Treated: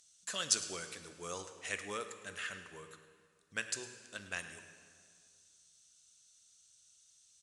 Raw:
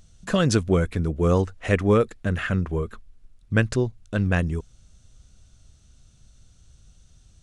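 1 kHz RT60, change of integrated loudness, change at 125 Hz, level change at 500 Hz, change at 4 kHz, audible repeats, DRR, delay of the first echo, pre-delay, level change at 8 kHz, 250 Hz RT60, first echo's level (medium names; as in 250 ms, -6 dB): 2.0 s, -15.5 dB, -34.5 dB, -23.0 dB, -4.0 dB, 1, 7.5 dB, 107 ms, 3 ms, +1.0 dB, 2.3 s, -16.0 dB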